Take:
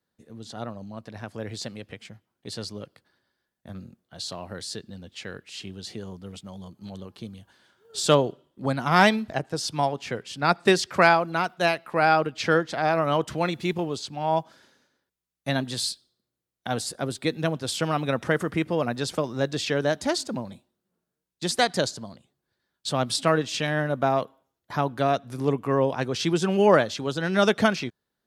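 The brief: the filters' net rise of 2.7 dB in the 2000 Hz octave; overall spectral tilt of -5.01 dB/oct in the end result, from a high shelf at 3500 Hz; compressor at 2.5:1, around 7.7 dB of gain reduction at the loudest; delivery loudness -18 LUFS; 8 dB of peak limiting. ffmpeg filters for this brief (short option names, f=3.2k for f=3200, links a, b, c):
-af "equalizer=f=2k:t=o:g=6,highshelf=f=3.5k:g=-8.5,acompressor=threshold=-23dB:ratio=2.5,volume=13.5dB,alimiter=limit=-3dB:level=0:latency=1"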